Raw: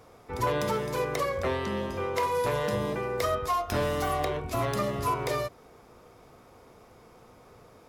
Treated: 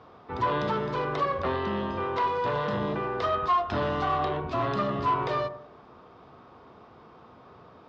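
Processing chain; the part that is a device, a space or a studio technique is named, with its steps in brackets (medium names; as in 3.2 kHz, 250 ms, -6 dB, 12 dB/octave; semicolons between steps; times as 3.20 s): analogue delay pedal into a guitar amplifier (bucket-brigade echo 94 ms, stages 1024, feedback 36%, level -12.5 dB; valve stage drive 24 dB, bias 0.3; cabinet simulation 80–3900 Hz, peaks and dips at 110 Hz -4 dB, 500 Hz -5 dB, 1.1 kHz +4 dB, 2.2 kHz -7 dB); trim +4 dB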